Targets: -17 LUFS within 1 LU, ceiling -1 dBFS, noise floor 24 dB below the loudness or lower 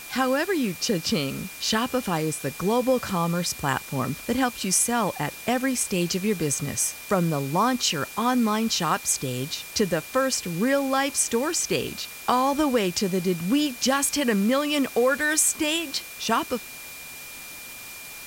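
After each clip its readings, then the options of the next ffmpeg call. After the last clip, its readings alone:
steady tone 2400 Hz; tone level -42 dBFS; noise floor -40 dBFS; noise floor target -48 dBFS; loudness -24.0 LUFS; peak -7.0 dBFS; loudness target -17.0 LUFS
-> -af "bandreject=f=2.4k:w=30"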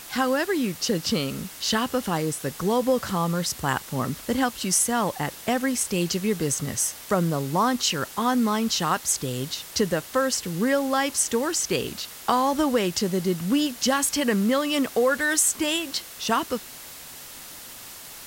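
steady tone none; noise floor -42 dBFS; noise floor target -49 dBFS
-> -af "afftdn=nr=7:nf=-42"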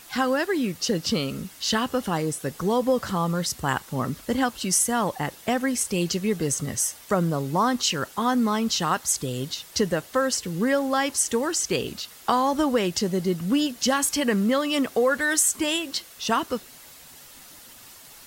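noise floor -47 dBFS; noise floor target -49 dBFS
-> -af "afftdn=nr=6:nf=-47"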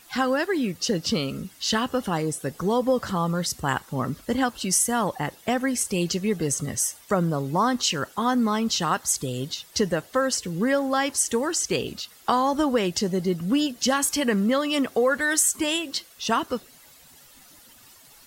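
noise floor -52 dBFS; loudness -24.5 LUFS; peak -7.5 dBFS; loudness target -17.0 LUFS
-> -af "volume=7.5dB,alimiter=limit=-1dB:level=0:latency=1"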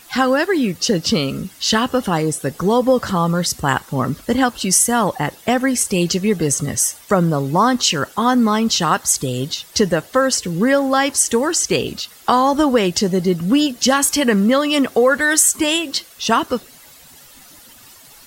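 loudness -17.0 LUFS; peak -1.0 dBFS; noise floor -44 dBFS

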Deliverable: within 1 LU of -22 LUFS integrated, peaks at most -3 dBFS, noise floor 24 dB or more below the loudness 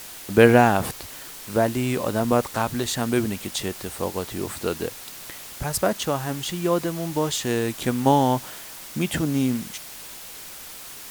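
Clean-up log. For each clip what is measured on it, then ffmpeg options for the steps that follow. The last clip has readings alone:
noise floor -40 dBFS; noise floor target -48 dBFS; loudness -23.5 LUFS; peak -1.5 dBFS; loudness target -22.0 LUFS
-> -af "afftdn=nr=8:nf=-40"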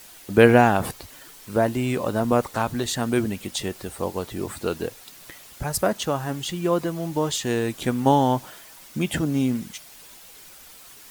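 noise floor -46 dBFS; noise floor target -48 dBFS
-> -af "afftdn=nr=6:nf=-46"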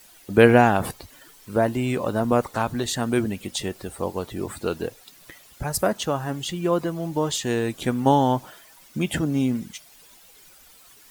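noise floor -51 dBFS; loudness -23.5 LUFS; peak -1.5 dBFS; loudness target -22.0 LUFS
-> -af "volume=1.5dB,alimiter=limit=-3dB:level=0:latency=1"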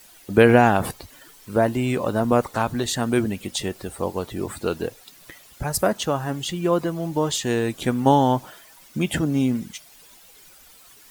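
loudness -22.5 LUFS; peak -3.0 dBFS; noise floor -50 dBFS

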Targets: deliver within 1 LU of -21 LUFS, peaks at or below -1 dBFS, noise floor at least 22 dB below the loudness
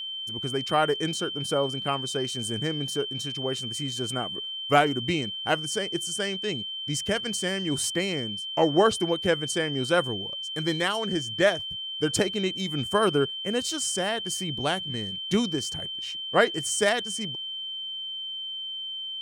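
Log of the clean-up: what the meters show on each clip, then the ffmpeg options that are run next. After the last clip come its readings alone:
steady tone 3100 Hz; tone level -32 dBFS; loudness -27.0 LUFS; peak -7.0 dBFS; loudness target -21.0 LUFS
-> -af "bandreject=f=3.1k:w=30"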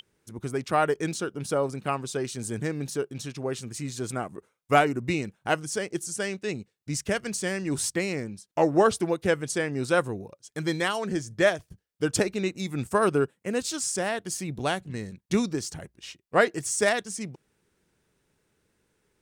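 steady tone none; loudness -28.0 LUFS; peak -6.5 dBFS; loudness target -21.0 LUFS
-> -af "volume=7dB,alimiter=limit=-1dB:level=0:latency=1"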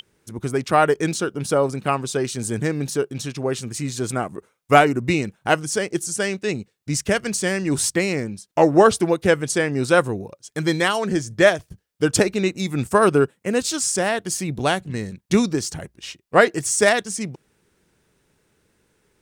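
loudness -21.0 LUFS; peak -1.0 dBFS; noise floor -68 dBFS

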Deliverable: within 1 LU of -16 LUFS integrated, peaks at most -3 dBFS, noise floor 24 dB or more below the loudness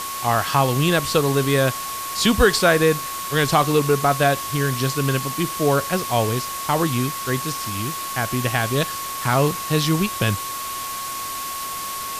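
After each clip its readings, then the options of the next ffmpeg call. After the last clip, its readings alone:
steady tone 1100 Hz; tone level -29 dBFS; noise floor -29 dBFS; noise floor target -45 dBFS; loudness -21.0 LUFS; peak -4.5 dBFS; loudness target -16.0 LUFS
-> -af "bandreject=f=1.1k:w=30"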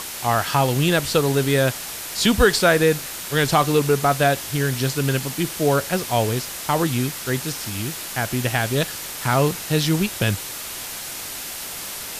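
steady tone none; noise floor -32 dBFS; noise floor target -45 dBFS
-> -af "afftdn=nr=13:nf=-32"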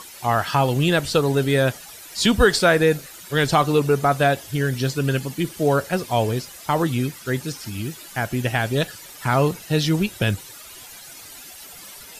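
noise floor -41 dBFS; noise floor target -46 dBFS
-> -af "afftdn=nr=6:nf=-41"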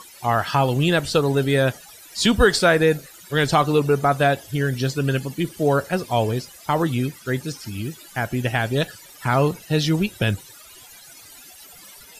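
noise floor -45 dBFS; noise floor target -46 dBFS
-> -af "afftdn=nr=6:nf=-45"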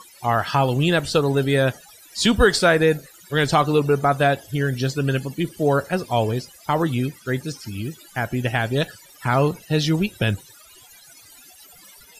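noise floor -49 dBFS; loudness -21.5 LUFS; peak -4.5 dBFS; loudness target -16.0 LUFS
-> -af "volume=5.5dB,alimiter=limit=-3dB:level=0:latency=1"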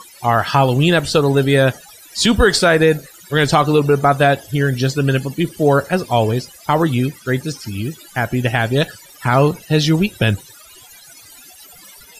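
loudness -16.5 LUFS; peak -3.0 dBFS; noise floor -43 dBFS

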